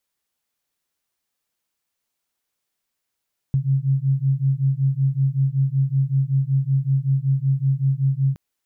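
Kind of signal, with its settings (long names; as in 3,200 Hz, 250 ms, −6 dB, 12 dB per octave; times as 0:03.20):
two tones that beat 133 Hz, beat 5.3 Hz, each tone −20 dBFS 4.82 s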